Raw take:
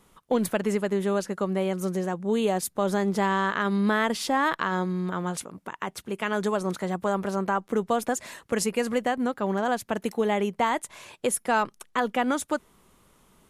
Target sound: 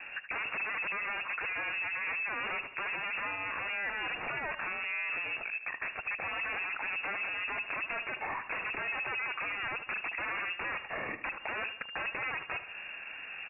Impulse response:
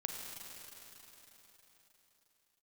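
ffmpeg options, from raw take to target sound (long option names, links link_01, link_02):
-af "aeval=exprs='0.266*sin(PI/2*10*val(0)/0.266)':channel_layout=same,lowpass=frequency=2400:width_type=q:width=0.5098,lowpass=frequency=2400:width_type=q:width=0.6013,lowpass=frequency=2400:width_type=q:width=0.9,lowpass=frequency=2400:width_type=q:width=2.563,afreqshift=-2800,alimiter=limit=-15.5dB:level=0:latency=1:release=195,acompressor=threshold=-29dB:ratio=2,aecho=1:1:76|152|228|304|380:0.251|0.116|0.0532|0.0244|0.0112,volume=-7.5dB"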